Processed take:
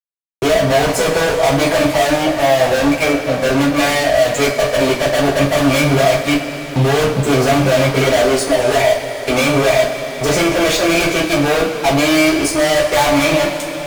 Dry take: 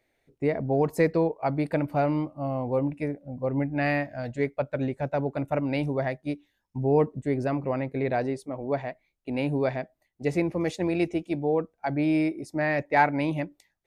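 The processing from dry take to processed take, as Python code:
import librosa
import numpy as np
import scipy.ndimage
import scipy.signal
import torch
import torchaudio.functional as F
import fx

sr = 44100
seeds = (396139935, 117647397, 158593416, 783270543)

y = scipy.signal.sosfilt(scipy.signal.butter(2, 81.0, 'highpass', fs=sr, output='sos'), x)
y = fx.riaa(y, sr, side='recording')
y = fx.env_lowpass_down(y, sr, base_hz=2900.0, full_db=-22.5)
y = fx.low_shelf(y, sr, hz=200.0, db=11.5, at=(5.3, 8.02))
y = fx.tube_stage(y, sr, drive_db=24.0, bias=0.8)
y = fx.small_body(y, sr, hz=(600.0, 2300.0), ring_ms=20, db=11)
y = fx.fuzz(y, sr, gain_db=45.0, gate_db=-53.0)
y = fx.rev_double_slope(y, sr, seeds[0], early_s=0.28, late_s=2.8, knee_db=-16, drr_db=-6.5)
y = fx.band_squash(y, sr, depth_pct=40)
y = F.gain(torch.from_numpy(y), -6.5).numpy()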